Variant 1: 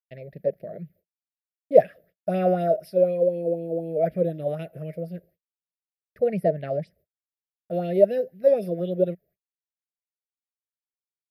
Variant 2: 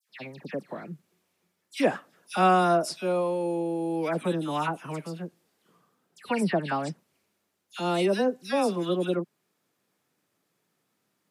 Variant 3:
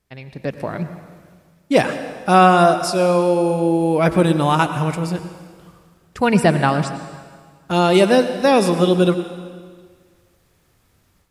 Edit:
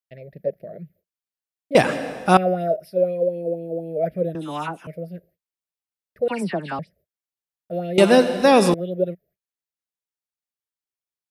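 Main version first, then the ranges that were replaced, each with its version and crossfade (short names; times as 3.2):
1
1.75–2.37 from 3
4.35–4.87 from 2
6.28–6.79 from 2
7.98–8.74 from 3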